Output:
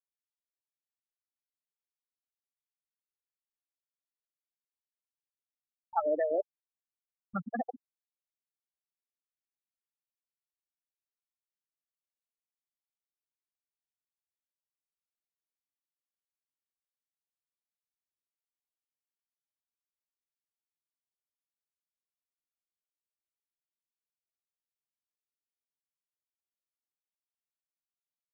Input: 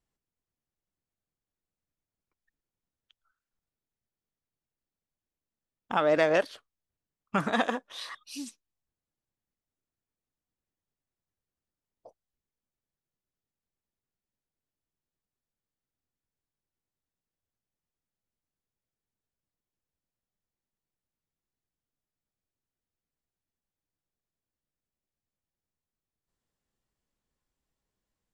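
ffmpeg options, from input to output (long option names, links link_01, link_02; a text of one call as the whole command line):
ffmpeg -i in.wav -filter_complex "[0:a]afftfilt=real='re*gte(hypot(re,im),0.251)':imag='im*gte(hypot(re,im),0.251)':win_size=1024:overlap=0.75,equalizer=frequency=860:width=6.9:gain=9,acrossover=split=170|640|2400[link_01][link_02][link_03][link_04];[link_01]acompressor=mode=upward:threshold=-45dB:ratio=2.5[link_05];[link_05][link_02][link_03][link_04]amix=inputs=4:normalize=0,volume=-5dB" out.wav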